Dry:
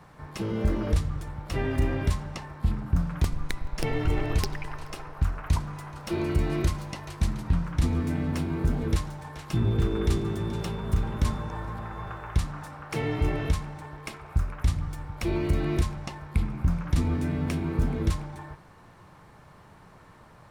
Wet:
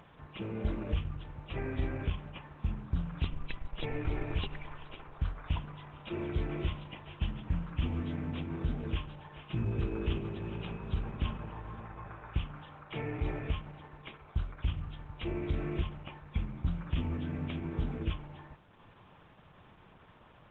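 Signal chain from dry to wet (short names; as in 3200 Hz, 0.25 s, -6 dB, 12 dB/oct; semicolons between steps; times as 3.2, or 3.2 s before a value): nonlinear frequency compression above 2300 Hz 4:1; upward compressor, threshold -42 dBFS; gain -8 dB; Opus 12 kbps 48000 Hz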